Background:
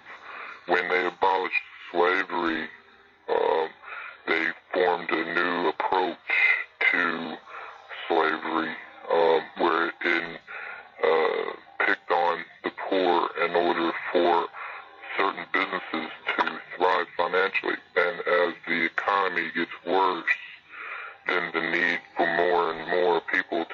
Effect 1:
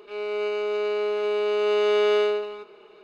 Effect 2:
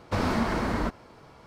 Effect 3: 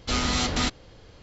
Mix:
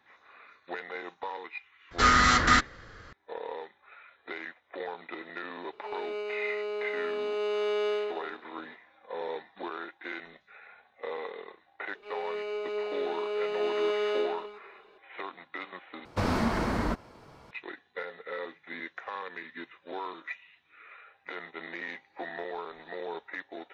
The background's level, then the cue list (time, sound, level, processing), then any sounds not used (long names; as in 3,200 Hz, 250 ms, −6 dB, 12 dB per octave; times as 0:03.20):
background −15 dB
0:01.91: mix in 3 −1.5 dB + flat-topped bell 1,500 Hz +13.5 dB 1 octave
0:05.73: mix in 1 −8.5 dB
0:11.95: mix in 1 −8 dB + phase shifter 1.2 Hz, delay 4.3 ms, feedback 26%
0:16.05: overwrite with 2 −1.5 dB